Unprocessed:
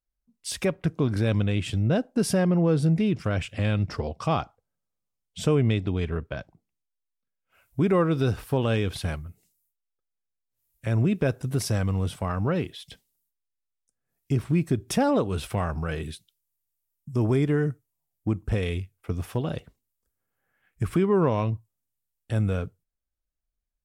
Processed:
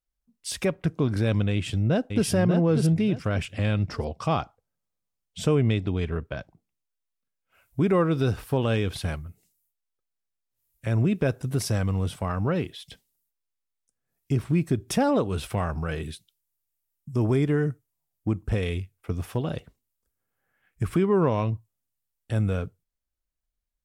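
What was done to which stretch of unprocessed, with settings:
1.51–2.27 echo throw 0.59 s, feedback 25%, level -5 dB

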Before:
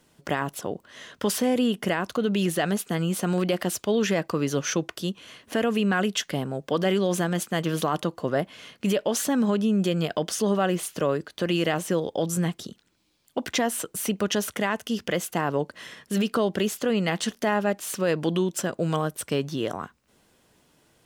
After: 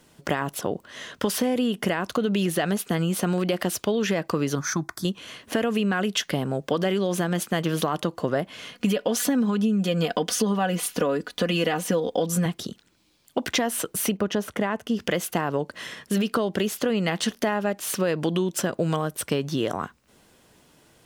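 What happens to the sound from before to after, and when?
4.55–5.05 fixed phaser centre 1200 Hz, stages 4
8.73–12.46 comb 4.1 ms, depth 66%
14.17–15 high shelf 2200 Hz -11.5 dB
whole clip: dynamic EQ 7500 Hz, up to -4 dB, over -47 dBFS, Q 2.4; compressor, threshold -25 dBFS; gain +5 dB

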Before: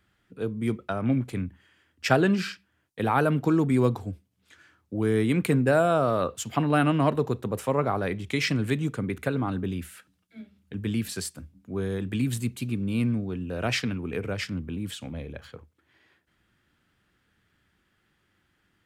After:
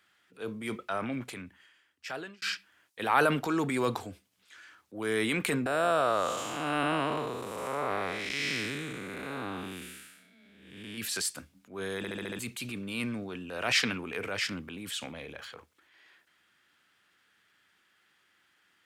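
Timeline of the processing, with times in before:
0.79–2.42 fade out
5.66–10.98 time blur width 0.313 s
11.97 stutter in place 0.07 s, 6 plays
whole clip: HPF 1300 Hz 6 dB/oct; high shelf 11000 Hz -4.5 dB; transient shaper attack -6 dB, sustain +5 dB; gain +6 dB

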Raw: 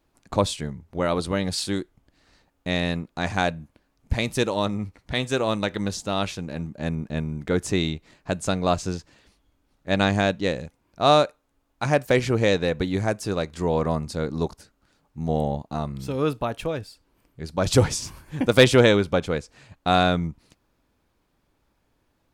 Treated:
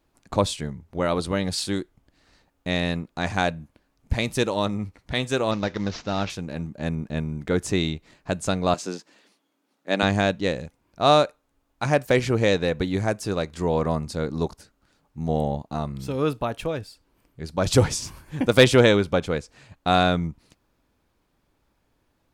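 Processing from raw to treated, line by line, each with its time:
5.51–6.3 CVSD 32 kbps
8.74–10.03 HPF 210 Hz 24 dB/oct

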